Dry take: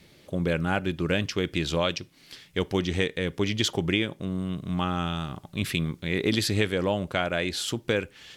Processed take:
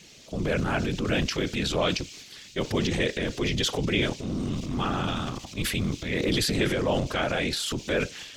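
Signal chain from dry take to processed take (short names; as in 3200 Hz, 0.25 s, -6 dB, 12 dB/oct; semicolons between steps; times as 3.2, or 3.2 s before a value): band noise 2300–7000 Hz -53 dBFS; whisperiser; transient shaper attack -3 dB, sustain +8 dB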